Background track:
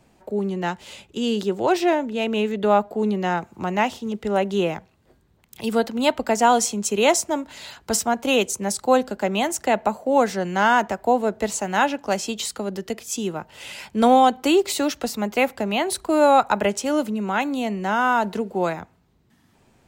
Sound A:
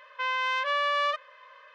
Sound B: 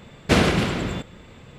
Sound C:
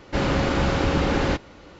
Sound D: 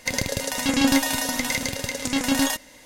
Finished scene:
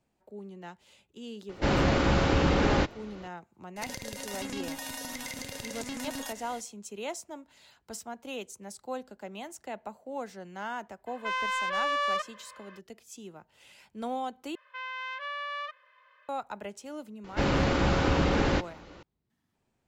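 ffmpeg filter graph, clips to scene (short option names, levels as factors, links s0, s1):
-filter_complex "[3:a]asplit=2[s0][s1];[1:a]asplit=2[s2][s3];[0:a]volume=0.112[s4];[4:a]acompressor=threshold=0.02:ratio=6:attack=3.2:release=140:knee=1:detection=peak[s5];[s2]asoftclip=type=tanh:threshold=0.0891[s6];[s3]equalizer=f=1900:w=0.56:g=7[s7];[s4]asplit=2[s8][s9];[s8]atrim=end=14.554[s10];[s7]atrim=end=1.74,asetpts=PTS-STARTPTS,volume=0.178[s11];[s9]atrim=start=16.286[s12];[s0]atrim=end=1.79,asetpts=PTS-STARTPTS,volume=0.75,afade=t=in:d=0.004:c=hsin,afade=t=out:st=1.786:d=0.004:c=hsin,adelay=1490[s13];[s5]atrim=end=2.85,asetpts=PTS-STARTPTS,volume=0.841,afade=t=in:d=0.004:c=hsin,afade=t=out:st=2.846:d=0.004:c=hsin,adelay=3760[s14];[s6]atrim=end=1.74,asetpts=PTS-STARTPTS,volume=0.944,afade=t=in:d=0.02,afade=t=out:st=1.72:d=0.02,adelay=487746S[s15];[s1]atrim=end=1.79,asetpts=PTS-STARTPTS,volume=0.668,afade=t=in:d=0.004:c=hsin,afade=t=out:st=1.786:d=0.004:c=hsin,adelay=17240[s16];[s10][s11]acrossfade=d=0.004:c1=hsin:c2=hsin[s17];[s17][s12]acrossfade=d=0.004:c1=hsin:c2=hsin[s18];[s18][s13][s14][s15][s16]amix=inputs=5:normalize=0"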